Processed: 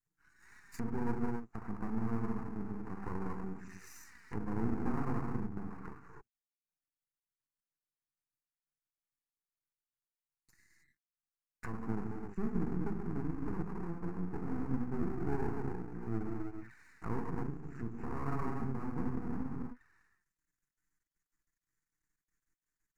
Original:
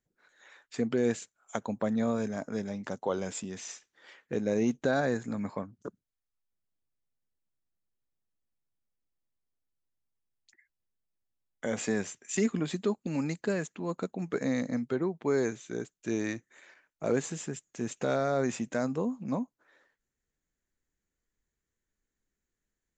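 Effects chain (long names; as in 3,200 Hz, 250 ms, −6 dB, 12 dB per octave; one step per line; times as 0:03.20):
reverb whose tail is shaped and stops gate 340 ms flat, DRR −3 dB
treble cut that deepens with the level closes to 550 Hz, closed at −28 dBFS
flanger swept by the level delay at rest 6.7 ms, full sweep at −30.5 dBFS
low-shelf EQ 460 Hz −6 dB
half-wave rectification
phaser with its sweep stopped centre 1,400 Hz, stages 4
level +3.5 dB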